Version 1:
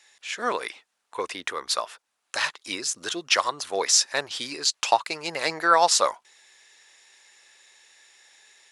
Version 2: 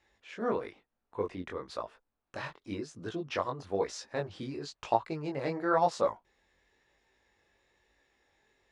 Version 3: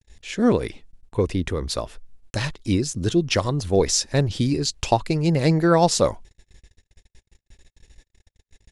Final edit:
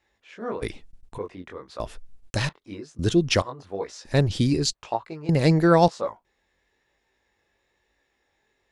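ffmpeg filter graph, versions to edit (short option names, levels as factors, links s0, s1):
-filter_complex "[2:a]asplit=5[s0][s1][s2][s3][s4];[1:a]asplit=6[s5][s6][s7][s8][s9][s10];[s5]atrim=end=0.622[s11];[s0]atrim=start=0.618:end=1.182[s12];[s6]atrim=start=1.178:end=1.802[s13];[s1]atrim=start=1.798:end=2.492[s14];[s7]atrim=start=2.488:end=2.992[s15];[s2]atrim=start=2.988:end=3.422[s16];[s8]atrim=start=3.418:end=4.052[s17];[s3]atrim=start=4.048:end=4.732[s18];[s9]atrim=start=4.728:end=5.292[s19];[s4]atrim=start=5.288:end=5.882[s20];[s10]atrim=start=5.878[s21];[s11][s12]acrossfade=d=0.004:c1=hsin:c2=hsin[s22];[s22][s13]acrossfade=d=0.004:c1=hsin:c2=hsin[s23];[s23][s14]acrossfade=d=0.004:c1=hsin:c2=hsin[s24];[s24][s15]acrossfade=d=0.004:c1=hsin:c2=hsin[s25];[s25][s16]acrossfade=d=0.004:c1=hsin:c2=hsin[s26];[s26][s17]acrossfade=d=0.004:c1=hsin:c2=hsin[s27];[s27][s18]acrossfade=d=0.004:c1=hsin:c2=hsin[s28];[s28][s19]acrossfade=d=0.004:c1=hsin:c2=hsin[s29];[s29][s20]acrossfade=d=0.004:c1=hsin:c2=hsin[s30];[s30][s21]acrossfade=d=0.004:c1=hsin:c2=hsin"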